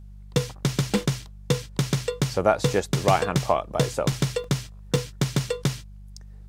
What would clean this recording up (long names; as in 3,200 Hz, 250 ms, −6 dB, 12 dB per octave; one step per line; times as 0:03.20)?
hum removal 49.5 Hz, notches 4
repair the gap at 0:00.90/0:01.22/0:02.73/0:04.12/0:04.44/0:04.96/0:05.49, 2.9 ms